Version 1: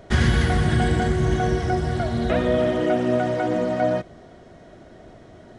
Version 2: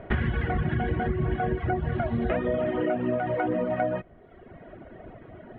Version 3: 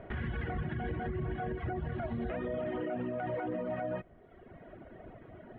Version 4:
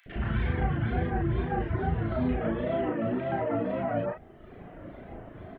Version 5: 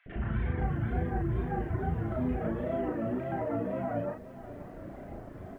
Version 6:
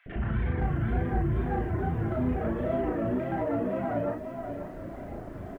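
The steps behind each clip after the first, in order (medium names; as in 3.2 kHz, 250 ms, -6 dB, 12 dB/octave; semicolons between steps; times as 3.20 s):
reverb removal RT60 1 s; steep low-pass 2.8 kHz 36 dB/octave; compression, threshold -26 dBFS, peak gain reduction 11.5 dB; trim +3 dB
peak limiter -22.5 dBFS, peak gain reduction 10.5 dB; trim -5.5 dB
wow and flutter 150 cents; doubling 36 ms -2 dB; three bands offset in time highs, lows, mids 60/120 ms, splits 460/2000 Hz; trim +6 dB
in parallel at -3 dB: compression 4:1, threshold -39 dBFS, peak gain reduction 14 dB; on the sum: distance through air 440 m; bit-crushed delay 532 ms, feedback 55%, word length 9-bit, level -14.5 dB; trim -4 dB
in parallel at -4.5 dB: saturation -31 dBFS, distortion -11 dB; on the sum: delay 535 ms -9 dB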